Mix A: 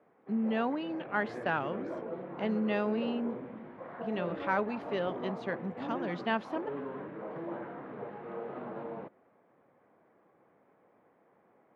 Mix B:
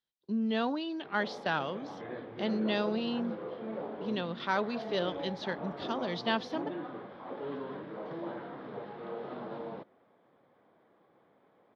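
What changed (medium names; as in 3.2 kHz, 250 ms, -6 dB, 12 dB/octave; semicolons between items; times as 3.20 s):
background: entry +0.75 s; master: add high-order bell 4.4 kHz +13.5 dB 1.1 oct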